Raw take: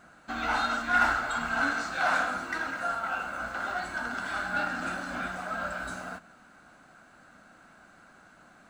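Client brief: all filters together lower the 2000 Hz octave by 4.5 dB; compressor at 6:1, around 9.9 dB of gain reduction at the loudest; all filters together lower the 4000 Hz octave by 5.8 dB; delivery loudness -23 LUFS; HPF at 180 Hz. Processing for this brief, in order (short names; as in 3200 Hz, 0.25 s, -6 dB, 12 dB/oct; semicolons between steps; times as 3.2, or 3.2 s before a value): HPF 180 Hz; bell 2000 Hz -6.5 dB; bell 4000 Hz -5 dB; compressor 6:1, threshold -33 dBFS; gain +14.5 dB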